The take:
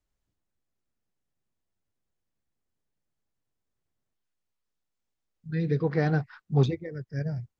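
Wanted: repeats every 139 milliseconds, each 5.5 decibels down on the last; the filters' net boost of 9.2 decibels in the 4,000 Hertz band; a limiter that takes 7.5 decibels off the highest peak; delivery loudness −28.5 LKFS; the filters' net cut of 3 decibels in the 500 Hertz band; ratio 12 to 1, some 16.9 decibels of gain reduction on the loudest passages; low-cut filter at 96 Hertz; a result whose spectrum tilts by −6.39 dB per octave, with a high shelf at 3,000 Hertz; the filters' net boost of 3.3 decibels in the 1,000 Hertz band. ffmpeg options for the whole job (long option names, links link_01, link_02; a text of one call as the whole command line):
ffmpeg -i in.wav -af "highpass=96,equalizer=frequency=500:width_type=o:gain=-5,equalizer=frequency=1000:width_type=o:gain=6.5,highshelf=frequency=3000:gain=6,equalizer=frequency=4000:width_type=o:gain=6,acompressor=threshold=-35dB:ratio=12,alimiter=level_in=9.5dB:limit=-24dB:level=0:latency=1,volume=-9.5dB,aecho=1:1:139|278|417|556|695|834|973:0.531|0.281|0.149|0.079|0.0419|0.0222|0.0118,volume=13.5dB" out.wav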